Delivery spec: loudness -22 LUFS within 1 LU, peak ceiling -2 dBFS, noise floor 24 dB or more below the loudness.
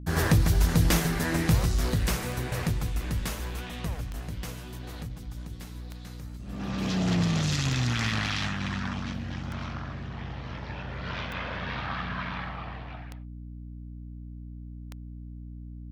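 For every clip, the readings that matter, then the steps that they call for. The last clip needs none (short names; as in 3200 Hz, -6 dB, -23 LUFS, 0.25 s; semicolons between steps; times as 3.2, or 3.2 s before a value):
clicks 9; hum 60 Hz; harmonics up to 300 Hz; hum level -39 dBFS; loudness -29.5 LUFS; peak -12.0 dBFS; loudness target -22.0 LUFS
-> de-click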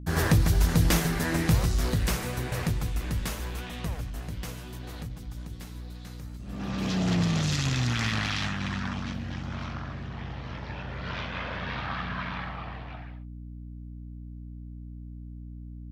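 clicks 0; hum 60 Hz; harmonics up to 300 Hz; hum level -39 dBFS
-> notches 60/120/180/240/300 Hz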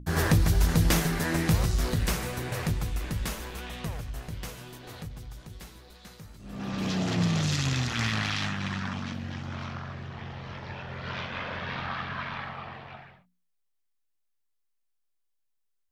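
hum none; loudness -30.0 LUFS; peak -12.0 dBFS; loudness target -22.0 LUFS
-> gain +8 dB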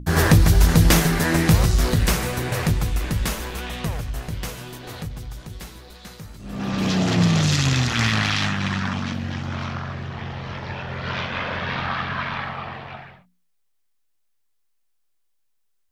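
loudness -22.0 LUFS; peak -4.0 dBFS; noise floor -67 dBFS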